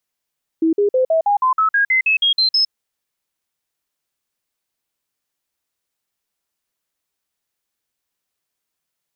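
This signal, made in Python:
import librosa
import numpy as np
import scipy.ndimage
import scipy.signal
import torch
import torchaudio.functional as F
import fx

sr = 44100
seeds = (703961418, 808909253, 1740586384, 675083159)

y = fx.stepped_sweep(sr, from_hz=324.0, direction='up', per_octave=3, tones=13, dwell_s=0.11, gap_s=0.05, level_db=-12.0)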